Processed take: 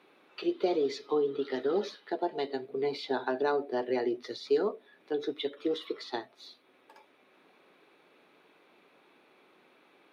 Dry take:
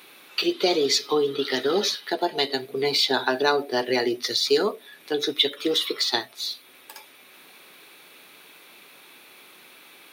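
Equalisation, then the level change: band-pass filter 390 Hz, Q 0.51; -5.5 dB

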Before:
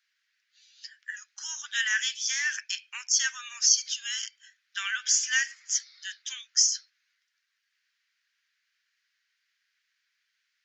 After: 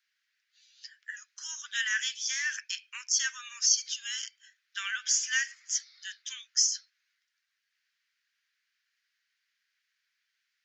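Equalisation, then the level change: steep high-pass 940 Hz 72 dB/octave; -3.0 dB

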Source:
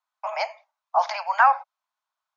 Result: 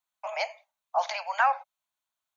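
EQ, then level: peaking EQ 1.1 kHz -13.5 dB 1.9 oct; peaking EQ 5.1 kHz -12 dB 0.24 oct; +5.0 dB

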